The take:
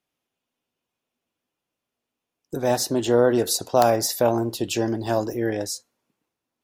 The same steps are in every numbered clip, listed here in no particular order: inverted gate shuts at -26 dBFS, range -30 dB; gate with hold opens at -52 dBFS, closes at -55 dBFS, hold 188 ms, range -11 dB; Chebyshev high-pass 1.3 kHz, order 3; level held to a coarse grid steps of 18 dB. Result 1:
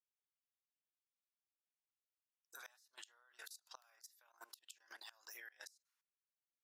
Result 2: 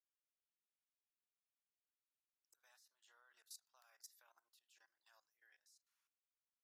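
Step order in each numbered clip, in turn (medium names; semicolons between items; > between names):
Chebyshev high-pass > inverted gate > gate with hold > level held to a coarse grid; gate with hold > inverted gate > Chebyshev high-pass > level held to a coarse grid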